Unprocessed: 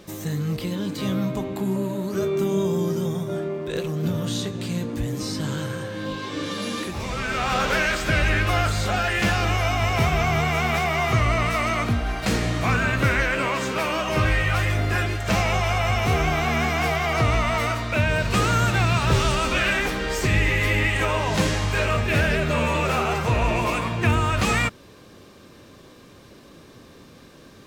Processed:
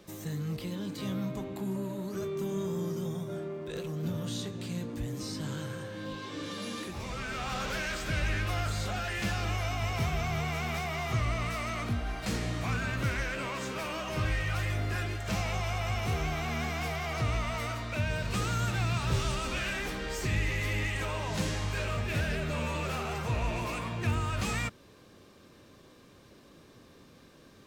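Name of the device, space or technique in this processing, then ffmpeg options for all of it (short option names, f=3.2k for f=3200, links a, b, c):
one-band saturation: -filter_complex "[0:a]acrossover=split=220|3500[a][b][c];[b]asoftclip=type=tanh:threshold=-24dB[d];[a][d][c]amix=inputs=3:normalize=0,volume=-8.5dB"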